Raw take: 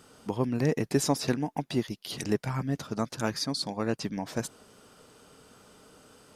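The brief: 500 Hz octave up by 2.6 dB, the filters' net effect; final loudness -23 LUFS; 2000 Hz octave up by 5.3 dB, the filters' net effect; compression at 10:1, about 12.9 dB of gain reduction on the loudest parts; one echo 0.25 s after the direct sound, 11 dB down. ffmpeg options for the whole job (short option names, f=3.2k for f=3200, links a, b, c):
-af "equalizer=f=500:t=o:g=3,equalizer=f=2k:t=o:g=6.5,acompressor=threshold=-32dB:ratio=10,aecho=1:1:250:0.282,volume=14.5dB"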